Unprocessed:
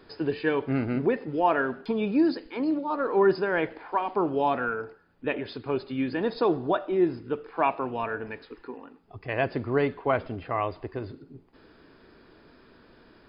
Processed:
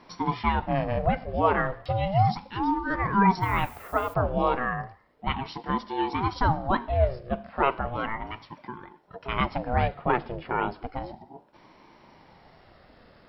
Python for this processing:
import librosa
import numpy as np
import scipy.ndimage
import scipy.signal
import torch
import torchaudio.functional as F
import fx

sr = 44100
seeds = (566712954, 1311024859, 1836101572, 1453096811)

y = fx.dmg_noise_colour(x, sr, seeds[0], colour='violet', level_db=-52.0, at=(3.41, 4.13), fade=0.02)
y = fx.ring_lfo(y, sr, carrier_hz=430.0, swing_pct=45, hz=0.34)
y = F.gain(torch.from_numpy(y), 3.5).numpy()